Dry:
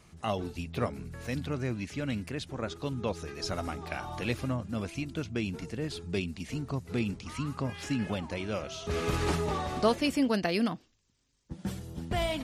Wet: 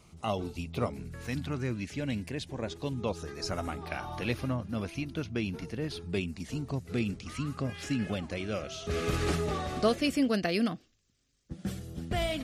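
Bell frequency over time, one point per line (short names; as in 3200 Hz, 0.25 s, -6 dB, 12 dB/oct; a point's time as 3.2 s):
bell -15 dB 0.2 oct
0.87 s 1700 Hz
1.42 s 420 Hz
2.02 s 1300 Hz
2.93 s 1300 Hz
3.91 s 7600 Hz
6.04 s 7600 Hz
6.84 s 930 Hz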